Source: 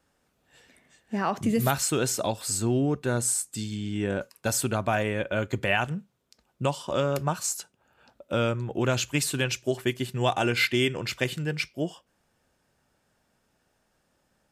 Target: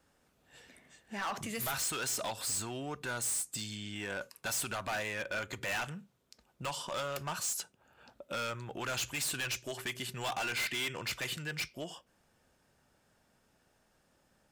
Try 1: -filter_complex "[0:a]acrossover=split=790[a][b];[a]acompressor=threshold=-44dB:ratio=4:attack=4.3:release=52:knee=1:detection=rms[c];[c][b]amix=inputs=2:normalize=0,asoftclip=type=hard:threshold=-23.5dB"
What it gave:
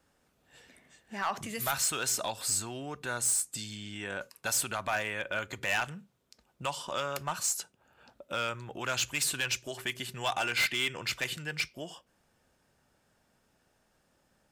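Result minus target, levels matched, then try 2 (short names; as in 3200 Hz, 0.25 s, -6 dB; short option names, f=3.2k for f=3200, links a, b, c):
hard clip: distortion -7 dB
-filter_complex "[0:a]acrossover=split=790[a][b];[a]acompressor=threshold=-44dB:ratio=4:attack=4.3:release=52:knee=1:detection=rms[c];[c][b]amix=inputs=2:normalize=0,asoftclip=type=hard:threshold=-32dB"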